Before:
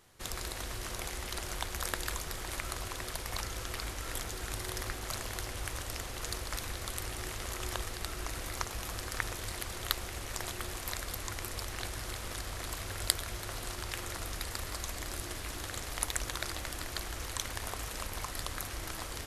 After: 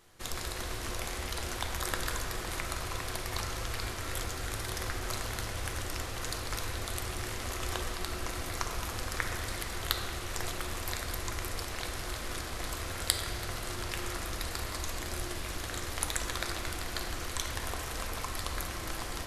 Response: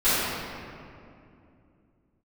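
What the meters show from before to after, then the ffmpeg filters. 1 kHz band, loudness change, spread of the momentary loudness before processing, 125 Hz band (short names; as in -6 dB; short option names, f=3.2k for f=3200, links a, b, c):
+3.0 dB, +2.0 dB, 4 LU, +3.0 dB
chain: -filter_complex "[0:a]asplit=2[a][b];[1:a]atrim=start_sample=2205,lowpass=8.4k[c];[b][c]afir=irnorm=-1:irlink=0,volume=-20dB[d];[a][d]amix=inputs=2:normalize=0"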